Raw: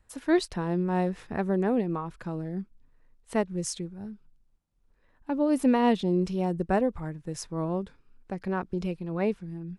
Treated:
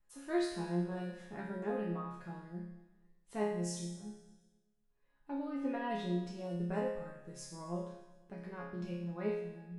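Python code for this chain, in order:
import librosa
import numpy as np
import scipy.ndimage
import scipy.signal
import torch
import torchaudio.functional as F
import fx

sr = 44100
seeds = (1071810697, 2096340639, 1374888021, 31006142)

y = fx.lowpass(x, sr, hz=2800.0, slope=12, at=(5.48, 5.89), fade=0.02)
y = fx.resonator_bank(y, sr, root=49, chord='major', decay_s=0.83)
y = fx.echo_feedback(y, sr, ms=122, feedback_pct=59, wet_db=-16)
y = y * 10.0 ** (10.5 / 20.0)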